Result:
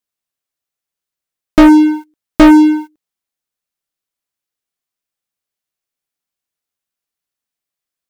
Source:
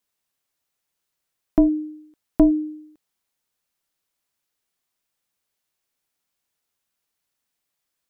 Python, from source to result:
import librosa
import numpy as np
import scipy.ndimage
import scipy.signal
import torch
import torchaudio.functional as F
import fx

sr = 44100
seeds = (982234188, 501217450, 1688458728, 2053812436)

y = fx.notch(x, sr, hz=910.0, q=18.0)
y = fx.leveller(y, sr, passes=5)
y = y * 10.0 ** (5.0 / 20.0)